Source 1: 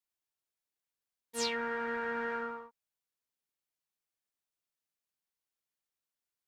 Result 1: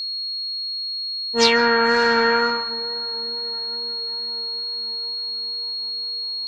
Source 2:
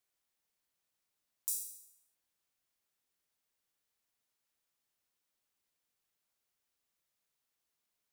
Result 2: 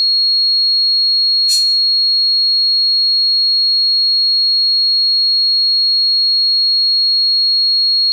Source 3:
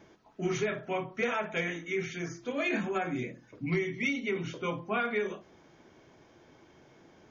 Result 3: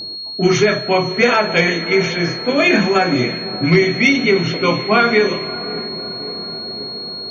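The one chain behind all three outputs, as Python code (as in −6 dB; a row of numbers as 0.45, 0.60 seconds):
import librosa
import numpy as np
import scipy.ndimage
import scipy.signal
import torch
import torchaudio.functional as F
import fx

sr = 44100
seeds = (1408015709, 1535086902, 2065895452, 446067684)

y = fx.echo_diffused(x, sr, ms=620, feedback_pct=69, wet_db=-14.0)
y = fx.wow_flutter(y, sr, seeds[0], rate_hz=2.1, depth_cents=18.0)
y = fx.env_lowpass(y, sr, base_hz=590.0, full_db=-27.5)
y = fx.rev_freeverb(y, sr, rt60_s=0.82, hf_ratio=0.55, predelay_ms=110, drr_db=19.0)
y = y + 10.0 ** (-43.0 / 20.0) * np.sin(2.0 * np.pi * 4300.0 * np.arange(len(y)) / sr)
y = librosa.util.normalize(y) * 10.0 ** (-2 / 20.0)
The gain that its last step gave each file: +18.0, +33.0, +17.0 decibels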